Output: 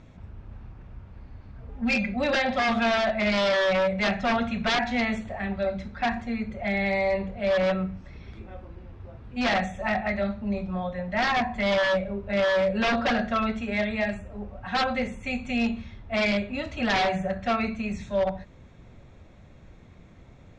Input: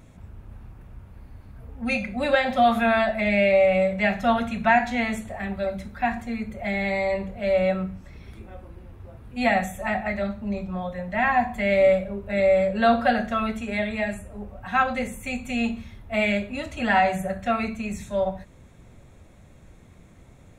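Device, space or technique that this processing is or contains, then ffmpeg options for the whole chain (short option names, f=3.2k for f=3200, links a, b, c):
synthesiser wavefolder: -filter_complex "[0:a]asettb=1/sr,asplit=3[a][b][c];[a]atrim=end=1.694[d];[b]atrim=start=1.69:end=2.14,asetpts=PTS-STARTPTS,afade=t=in:d=0.004:c=qsin,afade=t=out:st=0.446:d=0.004:c=qsin,aecho=1:1:5:0.58,atrim=end_sample=19845[e];[c]atrim=start=2.136[f];[d][e]acrossfade=d=0.004:c1=hsin:c2=qsin[g];[g][f]acrossfade=d=0.004:c1=qsin:c2=hsin,aeval=exprs='0.126*(abs(mod(val(0)/0.126+3,4)-2)-1)':c=same,lowpass=f=5.7k:w=0.5412,lowpass=f=5.7k:w=1.3066"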